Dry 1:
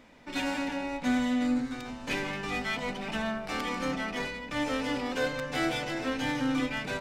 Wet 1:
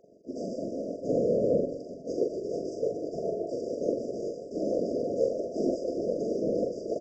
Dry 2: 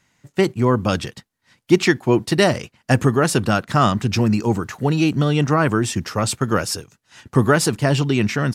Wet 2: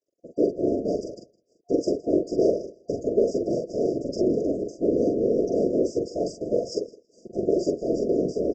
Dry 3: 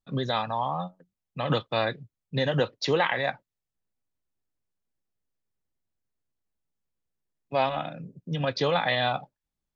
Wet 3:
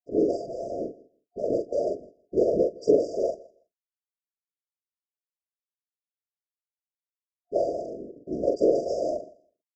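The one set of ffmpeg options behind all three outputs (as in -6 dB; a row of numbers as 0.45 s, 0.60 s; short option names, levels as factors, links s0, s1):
-filter_complex "[0:a]aemphasis=mode=reproduction:type=bsi,aeval=exprs='max(val(0),0)':c=same,asplit=2[s0][s1];[s1]acontrast=49,volume=0.891[s2];[s0][s2]amix=inputs=2:normalize=0,alimiter=limit=0.562:level=0:latency=1:release=205,aresample=16000,aeval=exprs='sgn(val(0))*max(abs(val(0))-0.00562,0)':c=same,aresample=44100,highpass=f=410:t=q:w=3.9,afftfilt=real='hypot(re,im)*cos(2*PI*random(0))':imag='hypot(re,im)*sin(2*PI*random(1))':win_size=512:overlap=0.75,afftfilt=real='re*(1-between(b*sr/4096,710,4700))':imag='im*(1-between(b*sr/4096,710,4700))':win_size=4096:overlap=0.75,asplit=2[s3][s4];[s4]adelay=43,volume=0.631[s5];[s3][s5]amix=inputs=2:normalize=0,aecho=1:1:162|324:0.075|0.012,volume=0.708"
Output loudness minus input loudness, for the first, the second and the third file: +0.5 LU, -6.5 LU, +0.5 LU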